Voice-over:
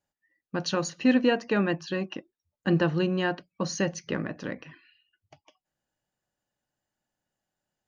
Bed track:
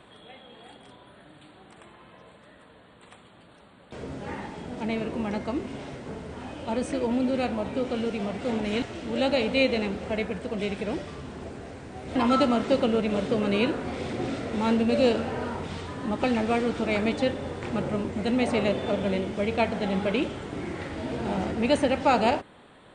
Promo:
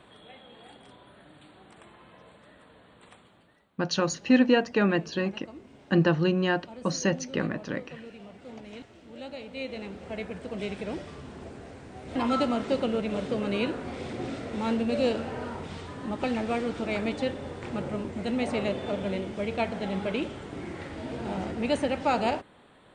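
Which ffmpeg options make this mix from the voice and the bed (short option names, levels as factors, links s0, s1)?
-filter_complex "[0:a]adelay=3250,volume=1.19[s0];[1:a]volume=3.16,afade=t=out:st=3.05:d=0.62:silence=0.199526,afade=t=in:st=9.49:d=1.11:silence=0.251189[s1];[s0][s1]amix=inputs=2:normalize=0"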